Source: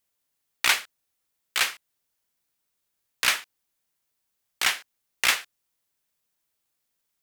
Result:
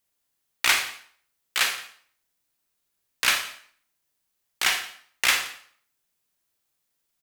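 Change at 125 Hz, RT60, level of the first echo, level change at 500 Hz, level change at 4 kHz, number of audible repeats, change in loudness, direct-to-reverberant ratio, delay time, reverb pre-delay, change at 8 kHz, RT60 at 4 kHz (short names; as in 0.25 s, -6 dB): n/a, 0.55 s, -21.5 dB, +1.5 dB, +1.5 dB, 1, +1.0 dB, 4.5 dB, 0.172 s, 28 ms, +1.5 dB, 0.50 s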